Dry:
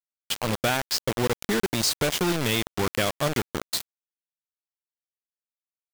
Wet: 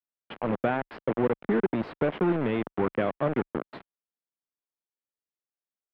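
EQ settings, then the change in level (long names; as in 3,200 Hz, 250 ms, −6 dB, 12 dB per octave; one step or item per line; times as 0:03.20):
high-frequency loss of the air 470 metres
three-way crossover with the lows and the highs turned down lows −18 dB, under 180 Hz, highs −19 dB, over 3,100 Hz
spectral tilt −2 dB per octave
0.0 dB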